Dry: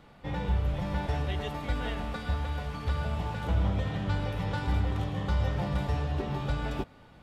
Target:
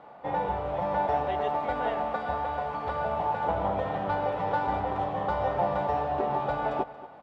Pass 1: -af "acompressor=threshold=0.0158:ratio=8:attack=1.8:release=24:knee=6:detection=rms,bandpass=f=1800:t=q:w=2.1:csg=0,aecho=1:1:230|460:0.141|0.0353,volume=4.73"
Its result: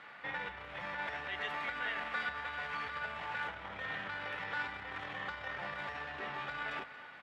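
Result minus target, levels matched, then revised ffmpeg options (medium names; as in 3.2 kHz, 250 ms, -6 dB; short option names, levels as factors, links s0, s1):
compression: peak gain reduction +15 dB; 2 kHz band +12.5 dB
-af "bandpass=f=750:t=q:w=2.1:csg=0,aecho=1:1:230|460:0.141|0.0353,volume=4.73"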